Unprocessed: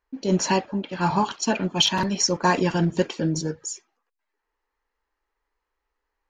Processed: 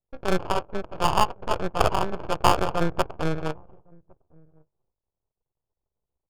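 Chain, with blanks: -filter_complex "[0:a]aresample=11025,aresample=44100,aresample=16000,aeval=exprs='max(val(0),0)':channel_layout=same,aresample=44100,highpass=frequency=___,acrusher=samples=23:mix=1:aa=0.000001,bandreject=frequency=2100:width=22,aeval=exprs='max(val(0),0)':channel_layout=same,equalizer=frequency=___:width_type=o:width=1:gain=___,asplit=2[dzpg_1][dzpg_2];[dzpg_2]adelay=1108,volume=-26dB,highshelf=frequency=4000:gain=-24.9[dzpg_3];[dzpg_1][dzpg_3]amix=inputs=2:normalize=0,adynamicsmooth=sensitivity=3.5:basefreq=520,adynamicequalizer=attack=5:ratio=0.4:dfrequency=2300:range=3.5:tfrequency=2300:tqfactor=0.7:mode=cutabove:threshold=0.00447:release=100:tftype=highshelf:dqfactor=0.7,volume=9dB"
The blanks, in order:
53, 250, -12.5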